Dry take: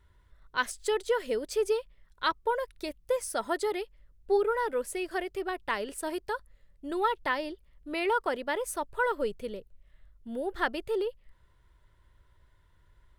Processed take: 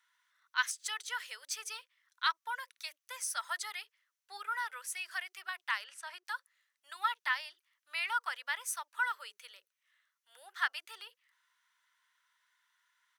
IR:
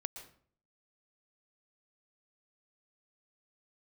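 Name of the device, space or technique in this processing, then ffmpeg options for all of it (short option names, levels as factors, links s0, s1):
headphones lying on a table: -filter_complex "[0:a]highpass=f=1200:w=0.5412,highpass=f=1200:w=1.3066,equalizer=f=6000:t=o:w=0.22:g=7.5,asettb=1/sr,asplit=3[s0][s1][s2];[s0]atrim=end=5.844[s3];[s1]atrim=start=5.84:end=6.25,asetpts=PTS-STARTPTS,afade=t=in:d=0.004:c=qsin,afade=t=out:st=0.406:d=0.004:c=qsin,aemphasis=mode=reproduction:type=bsi[s4];[s2]atrim=start=6.246[s5];[s3][s4]acrossfade=d=0.004:c1=hsin:c2=qsin[s6];[s6][s5]acrossfade=d=0.004:c1=qsin:c2=hsin,acrossover=split=290[s7][s8];[s7]adelay=50[s9];[s9][s8]amix=inputs=2:normalize=0"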